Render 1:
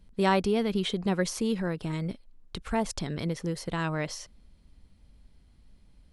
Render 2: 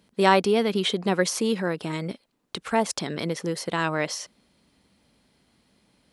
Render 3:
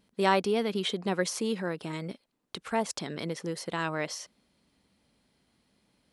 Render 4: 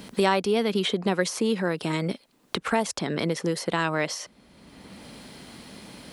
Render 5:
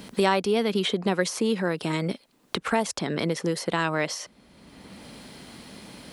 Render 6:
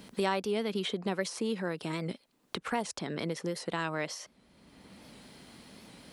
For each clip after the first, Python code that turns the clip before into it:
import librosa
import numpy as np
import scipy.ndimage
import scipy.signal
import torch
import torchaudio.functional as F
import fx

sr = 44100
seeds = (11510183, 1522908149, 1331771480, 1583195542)

y1 = scipy.signal.sosfilt(scipy.signal.bessel(2, 280.0, 'highpass', norm='mag', fs=sr, output='sos'), x)
y1 = y1 * librosa.db_to_amplitude(7.0)
y2 = fx.vibrato(y1, sr, rate_hz=0.53, depth_cents=8.2)
y2 = y2 * librosa.db_to_amplitude(-6.0)
y3 = fx.band_squash(y2, sr, depth_pct=70)
y3 = y3 * librosa.db_to_amplitude(5.5)
y4 = y3
y5 = fx.record_warp(y4, sr, rpm=78.0, depth_cents=100.0)
y5 = y5 * librosa.db_to_amplitude(-8.0)